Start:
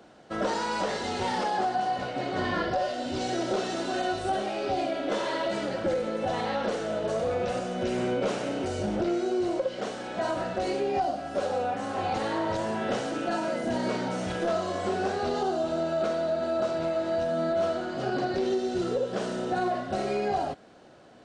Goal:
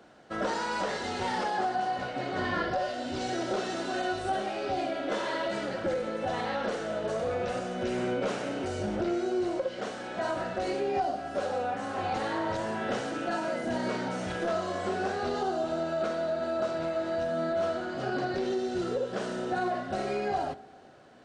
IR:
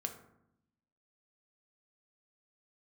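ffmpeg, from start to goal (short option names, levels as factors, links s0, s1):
-filter_complex "[0:a]equalizer=f=1600:t=o:w=0.95:g=3.5,asplit=2[s0][s1];[1:a]atrim=start_sample=2205,asetrate=24696,aresample=44100[s2];[s1][s2]afir=irnorm=-1:irlink=0,volume=0.178[s3];[s0][s3]amix=inputs=2:normalize=0,volume=0.596"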